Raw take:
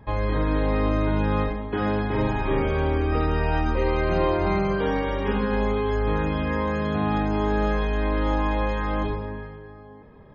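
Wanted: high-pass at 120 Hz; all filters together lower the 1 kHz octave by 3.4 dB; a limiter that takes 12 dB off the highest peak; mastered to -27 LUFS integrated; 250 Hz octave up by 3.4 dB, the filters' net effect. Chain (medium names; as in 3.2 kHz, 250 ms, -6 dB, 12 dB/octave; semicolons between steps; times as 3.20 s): high-pass 120 Hz; peaking EQ 250 Hz +5 dB; peaking EQ 1 kHz -4.5 dB; trim +4 dB; peak limiter -19 dBFS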